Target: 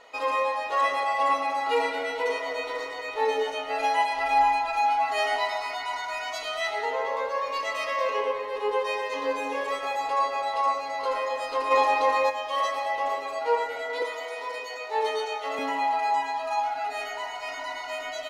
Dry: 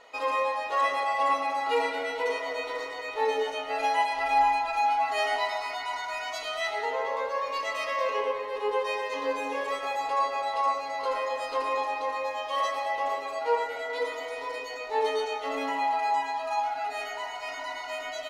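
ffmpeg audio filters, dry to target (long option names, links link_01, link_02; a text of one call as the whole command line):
ffmpeg -i in.wav -filter_complex "[0:a]asplit=3[link_01][link_02][link_03];[link_01]afade=type=out:start_time=11.7:duration=0.02[link_04];[link_02]acontrast=71,afade=type=in:start_time=11.7:duration=0.02,afade=type=out:start_time=12.29:duration=0.02[link_05];[link_03]afade=type=in:start_time=12.29:duration=0.02[link_06];[link_04][link_05][link_06]amix=inputs=3:normalize=0,asettb=1/sr,asplit=3[link_07][link_08][link_09];[link_07]atrim=end=14.024[link_10];[link_08]atrim=start=14.02:end=15.59,asetpts=PTS-STARTPTS,afade=type=in:duration=0.004:curve=qsin,afade=type=out:start_time=1.566:duration=0.004:curve=qsin,highpass=420[link_11];[link_09]atrim=start=15.586[link_12];[link_10][link_11]acrossfade=duration=0.004:curve1=hsin:curve2=qsin[link_13];[link_13][link_12]acrossfade=duration=0.004:curve1=qsin:curve2=hsin,volume=1.5dB" out.wav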